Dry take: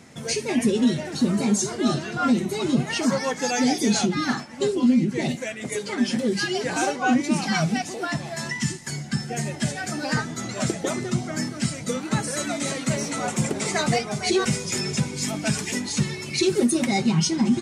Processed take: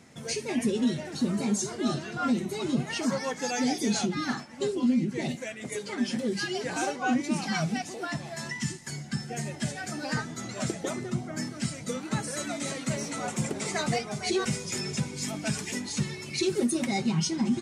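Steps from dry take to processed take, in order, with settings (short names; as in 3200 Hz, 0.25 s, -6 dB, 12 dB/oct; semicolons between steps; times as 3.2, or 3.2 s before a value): 10.89–11.36 bell 5500 Hz -1.5 dB -> -9 dB 2.4 oct; gain -6 dB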